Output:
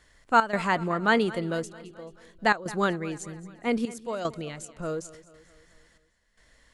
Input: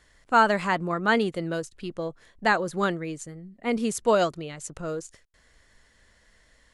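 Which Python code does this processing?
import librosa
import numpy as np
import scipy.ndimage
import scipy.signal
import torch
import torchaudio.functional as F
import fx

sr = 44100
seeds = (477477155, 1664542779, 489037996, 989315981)

y = fx.step_gate(x, sr, bpm=113, pattern='xxx.xxxxxxxxx...', floor_db=-12.0, edge_ms=4.5)
y = fx.echo_feedback(y, sr, ms=218, feedback_pct=54, wet_db=-18.5)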